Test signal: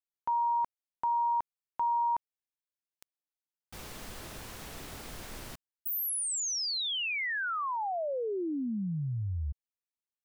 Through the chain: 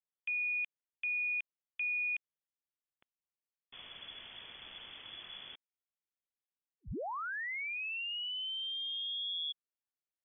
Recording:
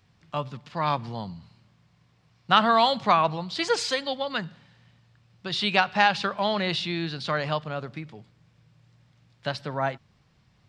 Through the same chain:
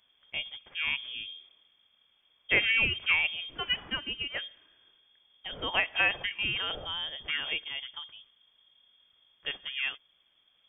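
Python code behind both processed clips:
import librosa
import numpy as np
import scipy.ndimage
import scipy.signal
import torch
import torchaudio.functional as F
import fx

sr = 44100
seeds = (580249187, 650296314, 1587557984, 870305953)

y = fx.freq_invert(x, sr, carrier_hz=3400)
y = F.gain(torch.from_numpy(y), -6.0).numpy()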